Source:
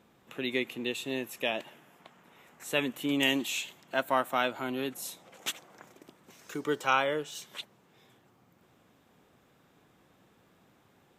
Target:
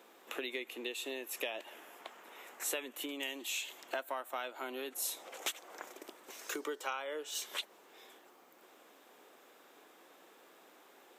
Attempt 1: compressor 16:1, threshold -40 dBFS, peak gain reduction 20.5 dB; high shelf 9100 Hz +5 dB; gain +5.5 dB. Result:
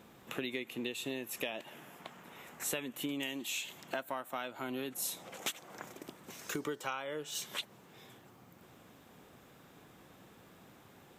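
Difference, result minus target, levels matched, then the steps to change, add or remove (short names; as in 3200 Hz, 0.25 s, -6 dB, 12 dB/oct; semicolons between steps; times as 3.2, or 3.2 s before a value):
250 Hz band +6.0 dB
add after compressor: HPF 330 Hz 24 dB/oct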